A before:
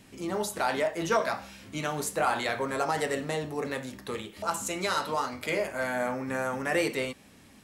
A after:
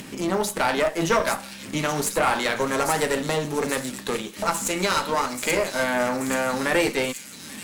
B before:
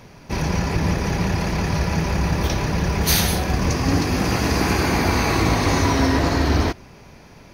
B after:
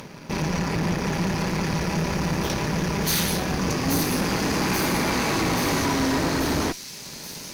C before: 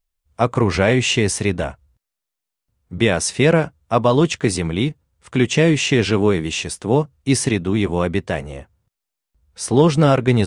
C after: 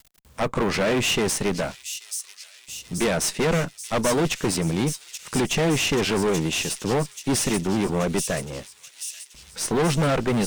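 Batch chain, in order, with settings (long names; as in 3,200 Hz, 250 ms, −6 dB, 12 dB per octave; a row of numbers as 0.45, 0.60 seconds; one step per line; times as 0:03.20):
mu-law and A-law mismatch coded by A
low shelf with overshoot 120 Hz −7.5 dB, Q 1.5
notch filter 710 Hz, Q 12
in parallel at −1.5 dB: upward compression, threshold −21 dBFS
on the sum: tube saturation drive 16 dB, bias 0.65
on a send: delay with a high-pass on its return 832 ms, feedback 66%, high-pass 5,200 Hz, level −3 dB
on the sum: loudness normalisation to −24 LKFS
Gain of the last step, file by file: +4.0, −3.0, −2.5 decibels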